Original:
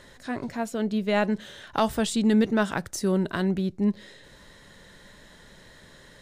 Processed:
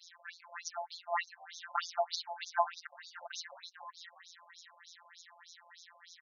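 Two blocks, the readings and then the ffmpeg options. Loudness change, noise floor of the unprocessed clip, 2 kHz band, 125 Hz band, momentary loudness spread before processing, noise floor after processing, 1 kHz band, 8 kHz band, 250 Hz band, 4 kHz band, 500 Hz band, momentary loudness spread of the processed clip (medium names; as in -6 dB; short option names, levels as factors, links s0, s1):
-13.5 dB, -52 dBFS, -9.5 dB, under -40 dB, 11 LU, -64 dBFS, -4.5 dB, -10.0 dB, under -40 dB, -6.5 dB, -14.0 dB, 21 LU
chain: -filter_complex "[0:a]afftfilt=real='hypot(re,im)*cos(PI*b)':imag='0':win_size=1024:overlap=0.75,adynamicequalizer=threshold=0.00178:dfrequency=3300:dqfactor=2.6:tfrequency=3300:tqfactor=2.6:attack=5:release=100:ratio=0.375:range=3:mode=cutabove:tftype=bell,aeval=exprs='0.282*(cos(1*acos(clip(val(0)/0.282,-1,1)))-cos(1*PI/2))+0.00316*(cos(2*acos(clip(val(0)/0.282,-1,1)))-cos(2*PI/2))+0.00316*(cos(6*acos(clip(val(0)/0.282,-1,1)))-cos(6*PI/2))':c=same,acontrast=39,highshelf=f=4700:t=q:w=1.5:g=9,asplit=4[s0][s1][s2][s3];[s1]adelay=410,afreqshift=42,volume=0.112[s4];[s2]adelay=820,afreqshift=84,volume=0.0484[s5];[s3]adelay=1230,afreqshift=126,volume=0.0207[s6];[s0][s4][s5][s6]amix=inputs=4:normalize=0,afftfilt=real='re*between(b*sr/1024,760*pow(4900/760,0.5+0.5*sin(2*PI*3.3*pts/sr))/1.41,760*pow(4900/760,0.5+0.5*sin(2*PI*3.3*pts/sr))*1.41)':imag='im*between(b*sr/1024,760*pow(4900/760,0.5+0.5*sin(2*PI*3.3*pts/sr))/1.41,760*pow(4900/760,0.5+0.5*sin(2*PI*3.3*pts/sr))*1.41)':win_size=1024:overlap=0.75,volume=0.891"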